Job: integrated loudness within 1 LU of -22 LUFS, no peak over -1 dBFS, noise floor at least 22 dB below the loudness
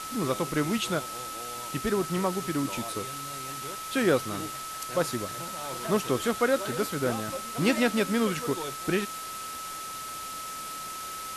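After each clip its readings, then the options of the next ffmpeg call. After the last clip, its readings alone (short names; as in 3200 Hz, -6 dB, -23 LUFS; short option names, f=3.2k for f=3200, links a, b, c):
steady tone 1300 Hz; tone level -37 dBFS; noise floor -38 dBFS; noise floor target -52 dBFS; loudness -29.5 LUFS; peak -10.5 dBFS; loudness target -22.0 LUFS
-> -af "bandreject=f=1.3k:w=30"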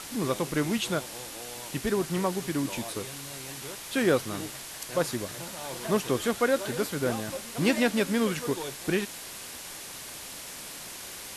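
steady tone none; noise floor -42 dBFS; noise floor target -52 dBFS
-> -af "afftdn=nr=10:nf=-42"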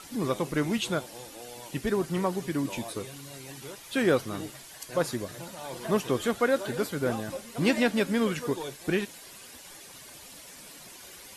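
noise floor -48 dBFS; noise floor target -52 dBFS
-> -af "afftdn=nr=6:nf=-48"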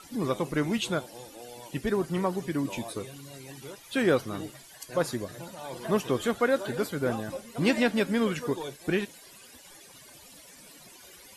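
noise floor -52 dBFS; loudness -29.5 LUFS; peak -10.5 dBFS; loudness target -22.0 LUFS
-> -af "volume=7.5dB"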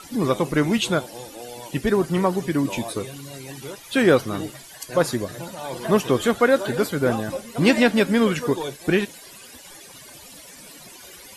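loudness -22.0 LUFS; peak -3.0 dBFS; noise floor -44 dBFS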